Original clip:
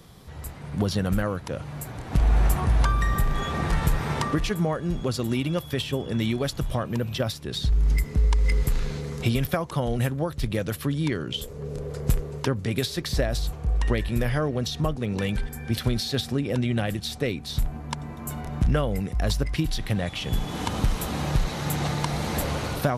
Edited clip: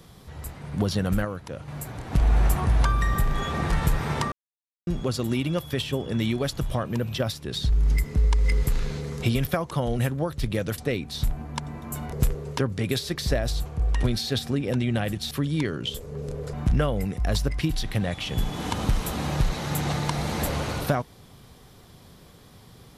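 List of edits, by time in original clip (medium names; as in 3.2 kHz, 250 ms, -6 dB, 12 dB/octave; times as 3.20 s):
1.25–1.68 s: gain -4.5 dB
4.32–4.87 s: mute
10.78–12.00 s: swap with 17.13–18.48 s
13.91–15.86 s: delete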